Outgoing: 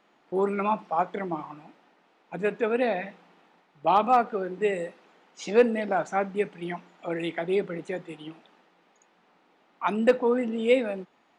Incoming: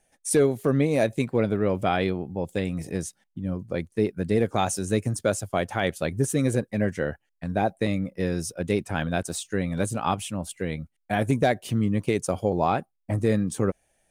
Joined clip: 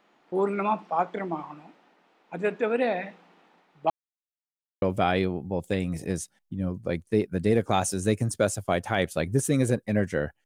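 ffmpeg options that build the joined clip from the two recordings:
-filter_complex "[0:a]apad=whole_dur=10.45,atrim=end=10.45,asplit=2[s0][s1];[s0]atrim=end=3.9,asetpts=PTS-STARTPTS,afade=t=out:st=3.896:d=0.004:c=hsin[s2];[s1]atrim=start=3.9:end=4.82,asetpts=PTS-STARTPTS,volume=0[s3];[1:a]atrim=start=1.67:end=7.3,asetpts=PTS-STARTPTS,afade=t=in:d=0.004:c=hsin[s4];[s2][s3][s4]concat=n=3:v=0:a=1"

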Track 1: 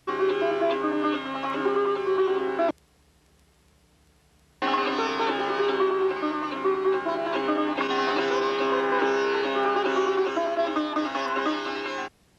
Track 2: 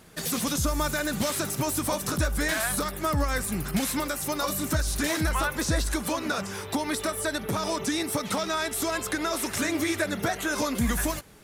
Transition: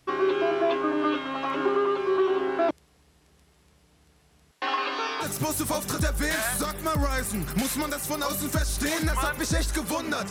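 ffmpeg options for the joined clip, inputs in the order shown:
-filter_complex "[0:a]asettb=1/sr,asplit=3[s0][s1][s2];[s0]atrim=end=4.514[s3];[s1]atrim=start=4.51:end=5.26,asetpts=PTS-STARTPTS,afade=t=in:d=0.004:c=qsin,afade=t=out:st=0.746:d=0.004:c=qsin,highpass=f=890:p=1[s4];[s2]atrim=start=5.256[s5];[s3][s4]acrossfade=d=0.004:c1=hsin:c2=qsin[s6];[s6][s5]acrossfade=d=0.004:c1=qsin:c2=hsin,apad=whole_dur=10.3,atrim=end=10.3,atrim=end=5.26,asetpts=PTS-STARTPTS[s7];[1:a]atrim=start=1.38:end=6.48,asetpts=PTS-STARTPTS[s8];[s7][s8]acrossfade=d=0.06:c1=tri:c2=tri"

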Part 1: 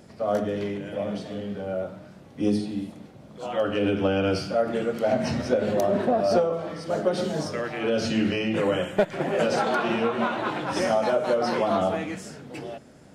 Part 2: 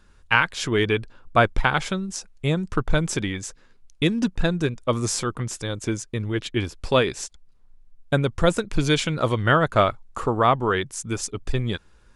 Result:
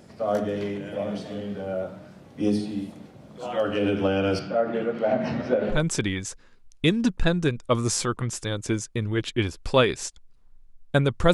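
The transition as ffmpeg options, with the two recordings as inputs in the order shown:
-filter_complex "[0:a]asettb=1/sr,asplit=3[s0][s1][s2];[s0]atrim=end=4.394[s3];[s1]atrim=start=4.39:end=5.83,asetpts=PTS-STARTPTS,afade=t=in:d=0.004:c=qsin,afade=t=out:st=1.436:d=0.004:c=qsin,highpass=120,lowpass=2900[s4];[s2]atrim=start=5.826[s5];[s3][s4]acrossfade=d=0.004:c1=hsin:c2=qsin[s6];[s6][s5]acrossfade=d=0.004:c1=qsin:c2=hsin,apad=whole_dur=11.33,atrim=end=11.33,atrim=end=5.83,asetpts=PTS-STARTPTS[s7];[1:a]atrim=start=2.85:end=8.51,asetpts=PTS-STARTPTS[s8];[s7][s8]acrossfade=d=0.16:c1=tri:c2=tri"

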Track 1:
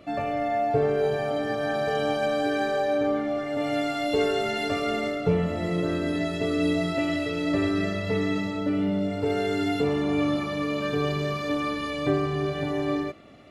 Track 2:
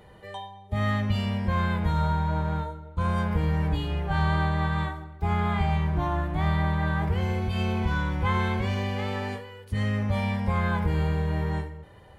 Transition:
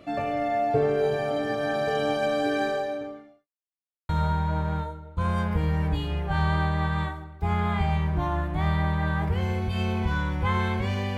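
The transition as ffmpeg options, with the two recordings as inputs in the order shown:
-filter_complex "[0:a]apad=whole_dur=11.17,atrim=end=11.17,asplit=2[s0][s1];[s0]atrim=end=3.48,asetpts=PTS-STARTPTS,afade=t=out:st=2.67:d=0.81:c=qua[s2];[s1]atrim=start=3.48:end=4.09,asetpts=PTS-STARTPTS,volume=0[s3];[1:a]atrim=start=1.89:end=8.97,asetpts=PTS-STARTPTS,afade=t=in:d=0.004:c=hsin[s4];[s2][s3][s4]concat=n=3:v=0:a=1"

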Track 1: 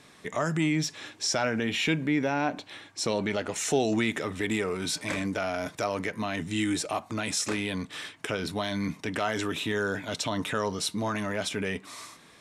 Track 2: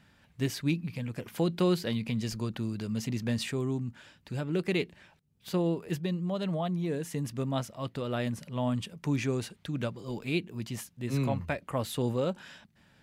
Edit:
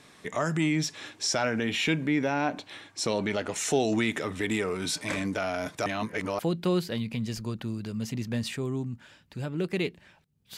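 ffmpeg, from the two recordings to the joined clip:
-filter_complex "[0:a]apad=whole_dur=10.57,atrim=end=10.57,asplit=2[s0][s1];[s0]atrim=end=5.862[s2];[s1]atrim=start=5.858:end=6.392,asetpts=PTS-STARTPTS,areverse[s3];[1:a]atrim=start=1.338:end=5.52[s4];[s2][s3]acrossfade=d=0.004:c1=hsin:c2=hsin[s5];[s5][s4]acrossfade=d=0.004:c1=hsin:c2=hsin"

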